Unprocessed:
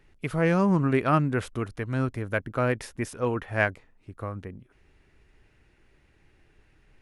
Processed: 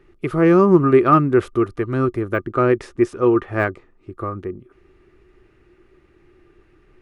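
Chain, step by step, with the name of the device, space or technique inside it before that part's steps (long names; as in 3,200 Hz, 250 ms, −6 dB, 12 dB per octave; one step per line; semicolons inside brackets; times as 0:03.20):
inside a helmet (high-shelf EQ 4,100 Hz −7.5 dB; hollow resonant body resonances 360/1,200 Hz, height 16 dB, ringing for 60 ms)
0:02.37–0:04.12: low-pass filter 9,200 Hz 24 dB per octave
de-essing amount 80%
level +4 dB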